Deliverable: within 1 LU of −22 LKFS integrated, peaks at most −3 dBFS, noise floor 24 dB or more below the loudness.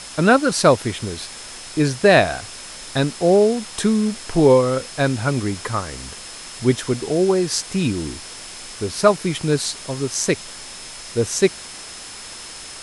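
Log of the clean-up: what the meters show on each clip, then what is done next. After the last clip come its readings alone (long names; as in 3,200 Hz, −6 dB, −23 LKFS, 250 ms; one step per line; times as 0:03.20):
interfering tone 5,200 Hz; level of the tone −41 dBFS; background noise floor −36 dBFS; target noise floor −44 dBFS; integrated loudness −19.5 LKFS; sample peak −1.5 dBFS; target loudness −22.0 LKFS
→ notch filter 5,200 Hz, Q 30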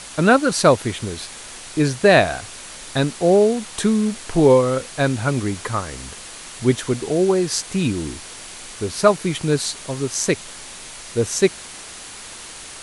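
interfering tone none found; background noise floor −37 dBFS; target noise floor −44 dBFS
→ noise reduction from a noise print 7 dB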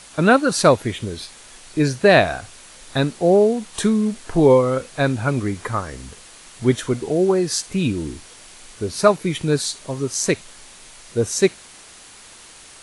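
background noise floor −44 dBFS; integrated loudness −19.5 LKFS; sample peak −1.5 dBFS; target loudness −22.0 LKFS
→ level −2.5 dB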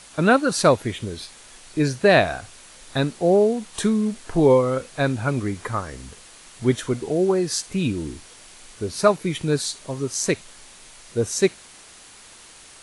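integrated loudness −22.0 LKFS; sample peak −4.0 dBFS; background noise floor −47 dBFS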